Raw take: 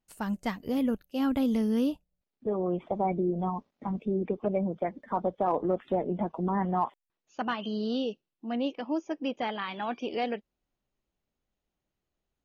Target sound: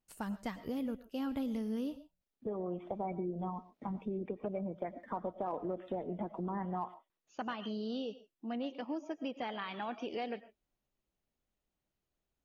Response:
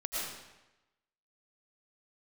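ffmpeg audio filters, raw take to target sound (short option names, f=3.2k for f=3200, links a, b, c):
-filter_complex "[0:a]acompressor=threshold=-34dB:ratio=2.5,asplit=2[a][b];[1:a]atrim=start_sample=2205,atrim=end_sample=6615[c];[b][c]afir=irnorm=-1:irlink=0,volume=-13.5dB[d];[a][d]amix=inputs=2:normalize=0,volume=-4.5dB"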